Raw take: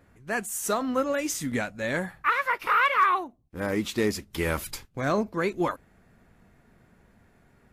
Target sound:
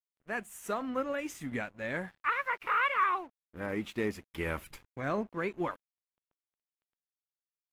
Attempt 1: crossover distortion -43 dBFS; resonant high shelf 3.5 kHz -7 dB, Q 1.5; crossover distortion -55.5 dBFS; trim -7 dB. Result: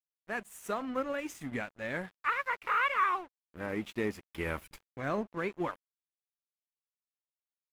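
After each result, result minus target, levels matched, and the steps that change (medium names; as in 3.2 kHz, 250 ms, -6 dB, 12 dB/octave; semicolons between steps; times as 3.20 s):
second crossover distortion: distortion +9 dB; first crossover distortion: distortion +6 dB
change: second crossover distortion -64.5 dBFS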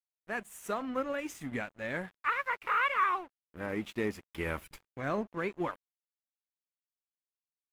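first crossover distortion: distortion +6 dB
change: first crossover distortion -49.5 dBFS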